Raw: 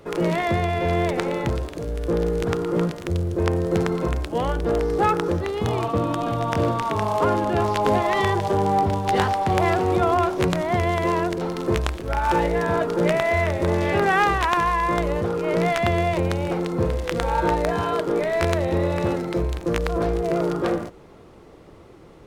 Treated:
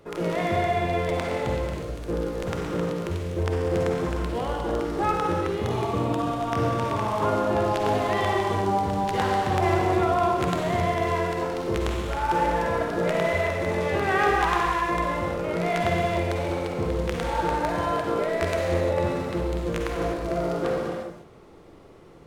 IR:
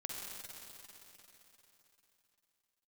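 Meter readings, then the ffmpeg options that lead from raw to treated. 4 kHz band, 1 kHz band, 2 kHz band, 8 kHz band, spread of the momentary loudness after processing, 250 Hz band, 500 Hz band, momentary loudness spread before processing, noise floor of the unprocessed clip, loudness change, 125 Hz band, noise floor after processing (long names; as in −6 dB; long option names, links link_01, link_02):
−2.5 dB, −2.5 dB, −2.5 dB, −2.5 dB, 6 LU, −4.0 dB, −3.0 dB, 5 LU, −46 dBFS, −3.0 dB, −4.0 dB, −46 dBFS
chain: -filter_complex "[1:a]atrim=start_sample=2205,afade=type=out:start_time=0.42:duration=0.01,atrim=end_sample=18963[link_01];[0:a][link_01]afir=irnorm=-1:irlink=0,volume=-1.5dB"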